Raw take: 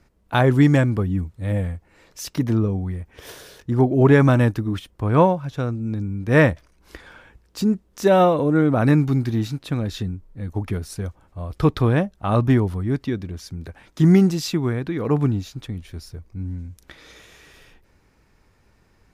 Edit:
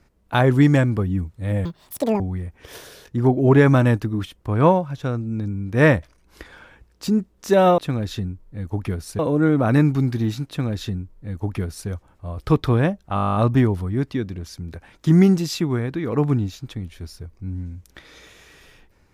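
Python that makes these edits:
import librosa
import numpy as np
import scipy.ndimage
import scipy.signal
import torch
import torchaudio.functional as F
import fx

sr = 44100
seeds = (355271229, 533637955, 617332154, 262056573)

y = fx.edit(x, sr, fx.speed_span(start_s=1.65, length_s=1.09, speed=1.98),
    fx.duplicate(start_s=9.61, length_s=1.41, to_s=8.32),
    fx.stutter(start_s=12.28, slice_s=0.02, count=11), tone=tone)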